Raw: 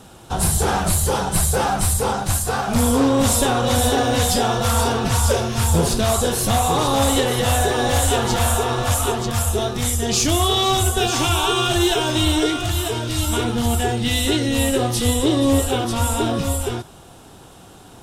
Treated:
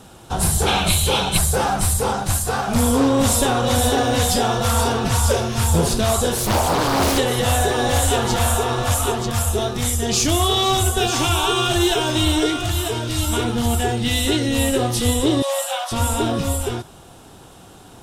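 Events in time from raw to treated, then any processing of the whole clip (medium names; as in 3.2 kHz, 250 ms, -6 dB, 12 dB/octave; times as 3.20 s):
0.67–1.37 s: time-frequency box 2.1–4.3 kHz +12 dB
6.37–7.18 s: loudspeaker Doppler distortion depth 0.91 ms
15.42–15.92 s: brick-wall FIR high-pass 520 Hz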